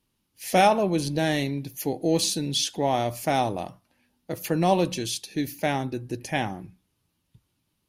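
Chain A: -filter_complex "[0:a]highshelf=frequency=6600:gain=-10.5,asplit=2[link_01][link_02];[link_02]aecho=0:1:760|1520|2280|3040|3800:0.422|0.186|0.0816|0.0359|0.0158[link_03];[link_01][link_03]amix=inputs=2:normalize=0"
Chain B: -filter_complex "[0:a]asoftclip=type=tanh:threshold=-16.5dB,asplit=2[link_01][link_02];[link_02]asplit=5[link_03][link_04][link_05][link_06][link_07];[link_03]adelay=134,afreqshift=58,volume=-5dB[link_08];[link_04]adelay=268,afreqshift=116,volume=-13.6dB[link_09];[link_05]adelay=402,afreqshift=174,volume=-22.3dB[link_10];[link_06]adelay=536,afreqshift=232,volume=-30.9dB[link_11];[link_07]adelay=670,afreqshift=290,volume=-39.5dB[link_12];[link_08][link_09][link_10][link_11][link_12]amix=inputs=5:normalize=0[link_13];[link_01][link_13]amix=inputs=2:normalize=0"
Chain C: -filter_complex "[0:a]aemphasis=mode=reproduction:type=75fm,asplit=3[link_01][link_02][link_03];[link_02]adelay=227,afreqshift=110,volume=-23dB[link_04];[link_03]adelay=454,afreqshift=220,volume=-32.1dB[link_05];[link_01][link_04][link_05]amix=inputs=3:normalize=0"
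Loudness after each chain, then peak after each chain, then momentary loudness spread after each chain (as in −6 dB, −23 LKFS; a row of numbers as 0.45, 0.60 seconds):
−26.0, −26.0, −25.5 LKFS; −8.5, −11.5, −8.5 dBFS; 14, 11, 13 LU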